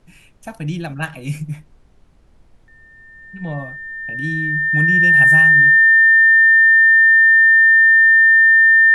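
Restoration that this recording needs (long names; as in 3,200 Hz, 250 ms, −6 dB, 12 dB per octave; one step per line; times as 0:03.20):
notch filter 1,800 Hz, Q 30
downward expander −41 dBFS, range −21 dB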